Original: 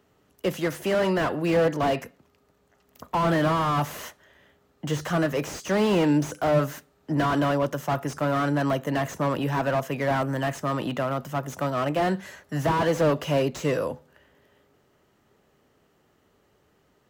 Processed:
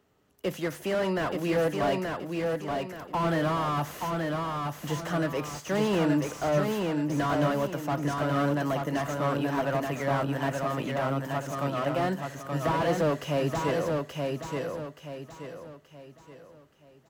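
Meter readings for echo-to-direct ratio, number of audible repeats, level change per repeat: −3.0 dB, 4, −8.5 dB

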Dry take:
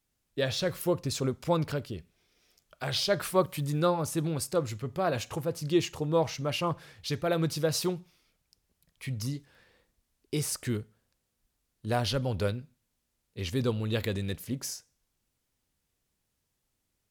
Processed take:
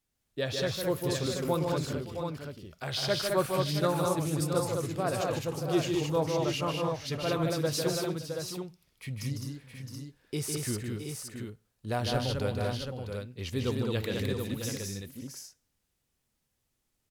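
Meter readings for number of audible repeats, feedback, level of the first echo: 5, repeats not evenly spaced, −5.5 dB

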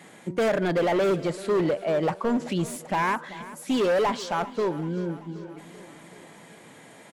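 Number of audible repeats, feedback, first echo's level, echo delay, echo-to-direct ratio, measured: 5, 60%, −17.0 dB, 386 ms, −15.0 dB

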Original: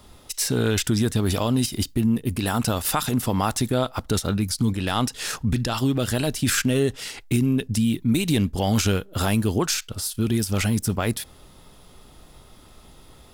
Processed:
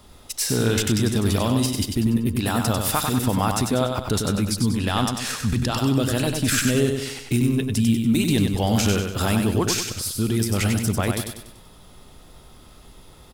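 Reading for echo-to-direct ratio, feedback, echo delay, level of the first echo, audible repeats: −4.0 dB, 44%, 96 ms, −5.0 dB, 5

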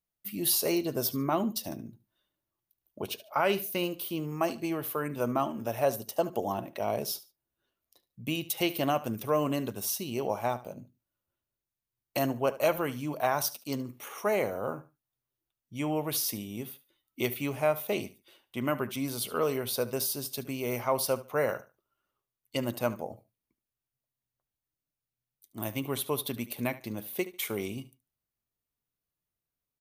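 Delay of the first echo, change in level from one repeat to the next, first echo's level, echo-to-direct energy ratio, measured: 73 ms, −12.5 dB, −17.0 dB, −17.0 dB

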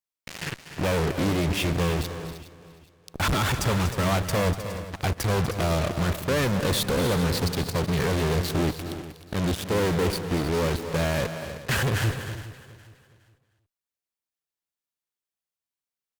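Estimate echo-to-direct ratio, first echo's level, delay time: −8.0 dB, −12.0 dB, 243 ms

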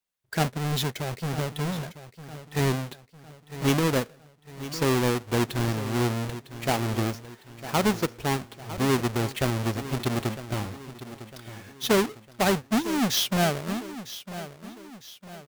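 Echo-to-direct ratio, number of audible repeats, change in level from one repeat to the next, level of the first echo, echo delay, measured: −13.0 dB, 4, −7.0 dB, −14.0 dB, 954 ms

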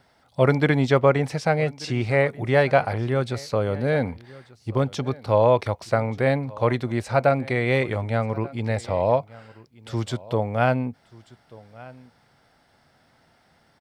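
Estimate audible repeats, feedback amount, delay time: 1, repeats not evenly spaced, 1,186 ms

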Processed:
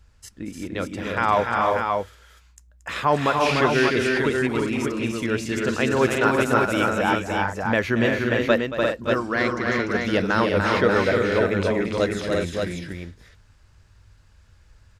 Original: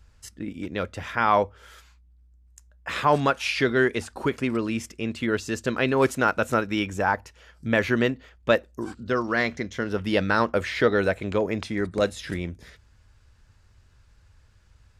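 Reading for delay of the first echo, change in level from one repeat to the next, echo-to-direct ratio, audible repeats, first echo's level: 228 ms, repeats not evenly spaced, 1.0 dB, 5, −12.5 dB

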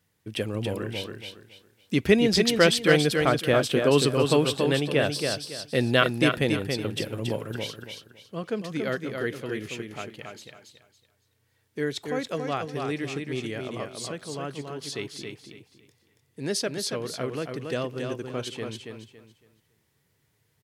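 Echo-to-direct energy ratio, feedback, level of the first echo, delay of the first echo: −4.5 dB, 27%, −5.0 dB, 279 ms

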